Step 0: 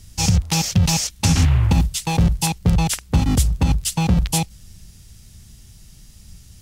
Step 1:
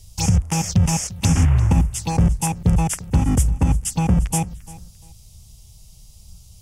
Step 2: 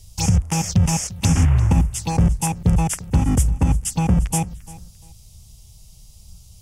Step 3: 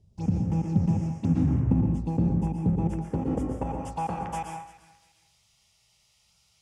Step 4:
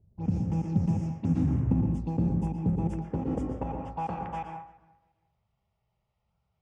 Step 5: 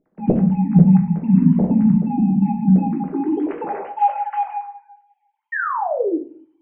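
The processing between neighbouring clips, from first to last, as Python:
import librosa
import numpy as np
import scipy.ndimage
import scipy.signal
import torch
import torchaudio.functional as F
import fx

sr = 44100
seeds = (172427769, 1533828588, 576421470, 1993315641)

y1 = fx.env_phaser(x, sr, low_hz=230.0, high_hz=4100.0, full_db=-17.0)
y1 = fx.echo_feedback(y1, sr, ms=346, feedback_pct=27, wet_db=-19.0)
y2 = y1
y3 = fx.filter_sweep_bandpass(y2, sr, from_hz=260.0, to_hz=1800.0, start_s=2.65, end_s=4.89, q=1.7)
y3 = fx.rev_plate(y3, sr, seeds[0], rt60_s=0.6, hf_ratio=0.9, predelay_ms=105, drr_db=2.0)
y4 = fx.env_lowpass(y3, sr, base_hz=910.0, full_db=-20.5)
y4 = F.gain(torch.from_numpy(y4), -2.5).numpy()
y5 = fx.sine_speech(y4, sr)
y5 = fx.spec_paint(y5, sr, seeds[1], shape='fall', start_s=5.52, length_s=0.66, low_hz=290.0, high_hz=1900.0, level_db=-32.0)
y5 = fx.room_shoebox(y5, sr, seeds[2], volume_m3=41.0, walls='mixed', distance_m=0.54)
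y5 = F.gain(torch.from_numpy(y5), 8.0).numpy()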